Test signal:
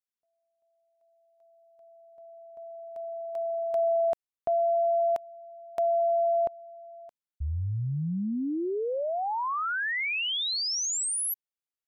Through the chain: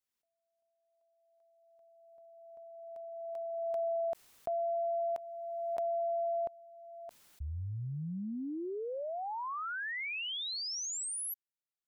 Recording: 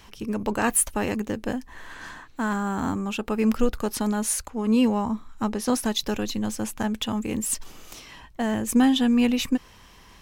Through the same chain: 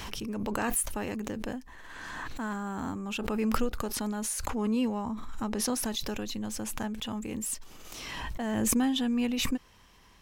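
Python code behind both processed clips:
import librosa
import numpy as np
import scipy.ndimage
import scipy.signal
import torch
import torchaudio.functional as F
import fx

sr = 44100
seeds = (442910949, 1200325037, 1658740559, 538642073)

y = fx.pre_swell(x, sr, db_per_s=23.0)
y = y * librosa.db_to_amplitude(-8.5)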